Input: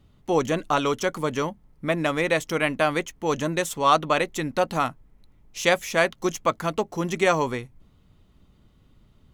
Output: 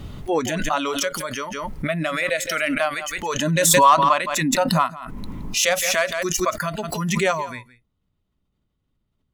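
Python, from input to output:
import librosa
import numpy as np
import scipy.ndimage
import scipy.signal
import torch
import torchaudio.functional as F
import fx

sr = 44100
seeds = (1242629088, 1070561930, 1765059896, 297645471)

y = fx.noise_reduce_blind(x, sr, reduce_db=18)
y = np.clip(y, -10.0 ** (-8.5 / 20.0), 10.0 ** (-8.5 / 20.0))
y = fx.small_body(y, sr, hz=(220.0, 1000.0), ring_ms=20, db=12, at=(3.39, 5.59))
y = 10.0 ** (-4.0 / 20.0) * np.tanh(y / 10.0 ** (-4.0 / 20.0))
y = y + 10.0 ** (-18.5 / 20.0) * np.pad(y, (int(168 * sr / 1000.0), 0))[:len(y)]
y = fx.pre_swell(y, sr, db_per_s=25.0)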